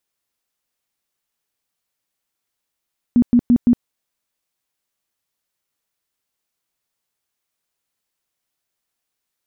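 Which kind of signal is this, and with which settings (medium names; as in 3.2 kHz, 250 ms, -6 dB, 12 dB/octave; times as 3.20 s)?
tone bursts 241 Hz, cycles 15, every 0.17 s, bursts 4, -8.5 dBFS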